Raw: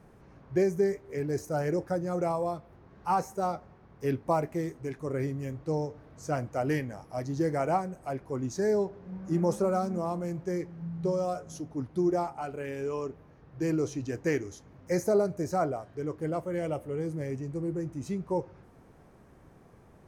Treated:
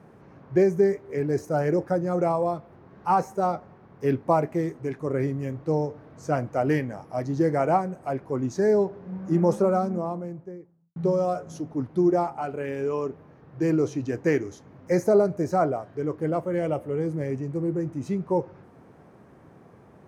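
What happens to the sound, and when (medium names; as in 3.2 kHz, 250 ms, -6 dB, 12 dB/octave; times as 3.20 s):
9.54–10.96 s: studio fade out
whole clip: high-pass 110 Hz; treble shelf 3.6 kHz -9.5 dB; trim +6 dB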